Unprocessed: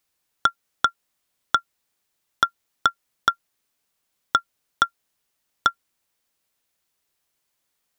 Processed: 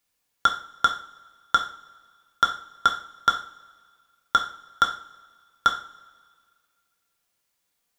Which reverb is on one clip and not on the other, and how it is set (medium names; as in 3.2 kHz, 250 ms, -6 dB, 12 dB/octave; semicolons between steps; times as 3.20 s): two-slope reverb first 0.42 s, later 1.9 s, from -21 dB, DRR 1 dB; trim -2.5 dB